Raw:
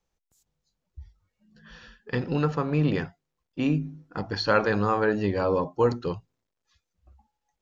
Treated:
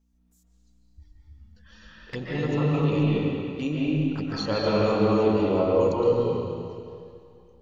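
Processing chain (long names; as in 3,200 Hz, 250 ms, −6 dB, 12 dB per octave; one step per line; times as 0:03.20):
high-shelf EQ 4,900 Hz +10.5 dB
mains-hum notches 60/120/180/240 Hz
mains hum 60 Hz, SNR 32 dB
flanger swept by the level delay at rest 4.6 ms, full sweep at −25 dBFS
convolution reverb RT60 2.3 s, pre-delay 105 ms, DRR −7 dB
level −4 dB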